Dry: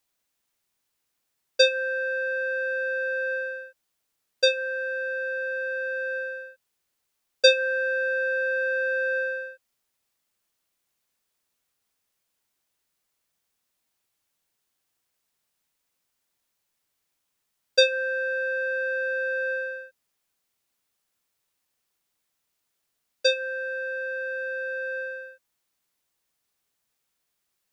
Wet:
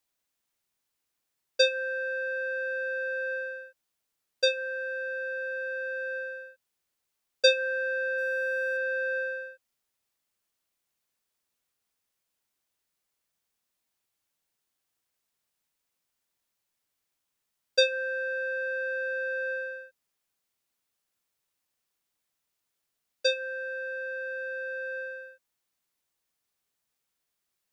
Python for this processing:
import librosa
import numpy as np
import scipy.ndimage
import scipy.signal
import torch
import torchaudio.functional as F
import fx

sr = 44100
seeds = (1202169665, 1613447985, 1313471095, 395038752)

y = fx.zero_step(x, sr, step_db=-48.0, at=(8.18, 8.77))
y = y * 10.0 ** (-4.0 / 20.0)